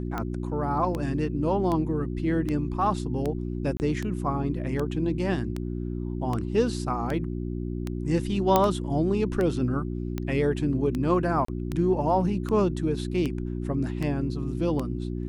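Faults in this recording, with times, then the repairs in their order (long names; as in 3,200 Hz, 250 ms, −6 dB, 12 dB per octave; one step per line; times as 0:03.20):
mains hum 60 Hz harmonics 6 −31 dBFS
scratch tick 78 rpm −17 dBFS
0:03.77–0:03.80: drop-out 29 ms
0:08.56: click −6 dBFS
0:11.45–0:11.48: drop-out 34 ms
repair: click removal
hum removal 60 Hz, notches 6
repair the gap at 0:03.77, 29 ms
repair the gap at 0:11.45, 34 ms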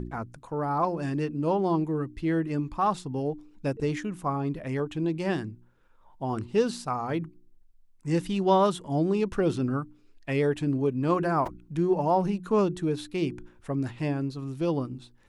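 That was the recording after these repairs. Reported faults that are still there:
0:08.56: click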